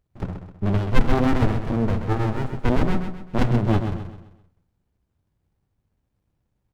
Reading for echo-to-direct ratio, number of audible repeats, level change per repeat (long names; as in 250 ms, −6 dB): −7.0 dB, 4, −8.0 dB